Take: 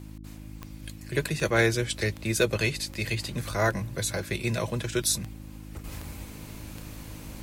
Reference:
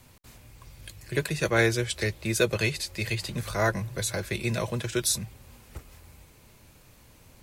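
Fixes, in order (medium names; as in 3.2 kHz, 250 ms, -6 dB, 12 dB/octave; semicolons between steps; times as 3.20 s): clip repair -12.5 dBFS; de-click; de-hum 52.4 Hz, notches 6; gain correction -10.5 dB, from 5.84 s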